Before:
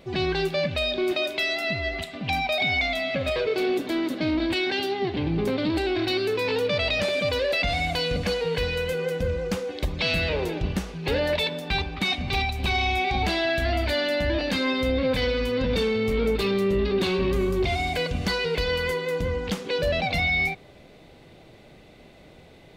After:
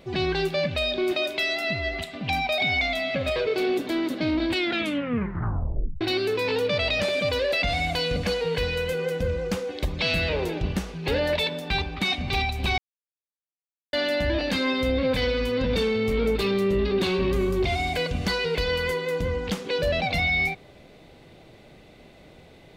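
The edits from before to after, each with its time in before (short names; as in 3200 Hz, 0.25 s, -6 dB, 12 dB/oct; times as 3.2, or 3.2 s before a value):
4.57 tape stop 1.44 s
12.78–13.93 mute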